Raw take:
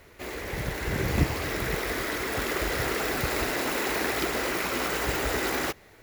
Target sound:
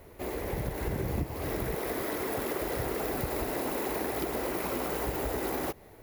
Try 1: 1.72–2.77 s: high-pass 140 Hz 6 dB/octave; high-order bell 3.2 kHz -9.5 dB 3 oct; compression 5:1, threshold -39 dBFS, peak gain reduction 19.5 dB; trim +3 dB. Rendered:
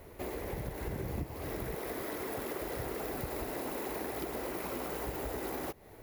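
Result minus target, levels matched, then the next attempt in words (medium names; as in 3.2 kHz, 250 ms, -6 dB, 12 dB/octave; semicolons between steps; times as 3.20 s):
compression: peak gain reduction +5.5 dB
1.72–2.77 s: high-pass 140 Hz 6 dB/octave; high-order bell 3.2 kHz -9.5 dB 3 oct; compression 5:1, threshold -32 dBFS, peak gain reduction 14 dB; trim +3 dB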